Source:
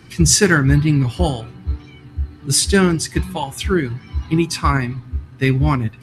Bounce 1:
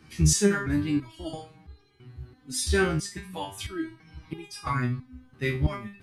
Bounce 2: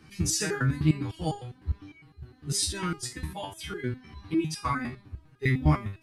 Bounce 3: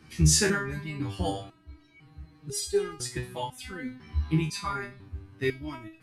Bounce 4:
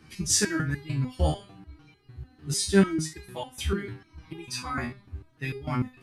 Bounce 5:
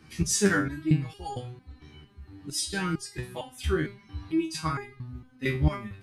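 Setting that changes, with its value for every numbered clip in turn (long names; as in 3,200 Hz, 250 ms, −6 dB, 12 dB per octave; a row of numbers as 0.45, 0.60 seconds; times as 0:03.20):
step-sequenced resonator, speed: 3, 9.9, 2, 6.7, 4.4 Hertz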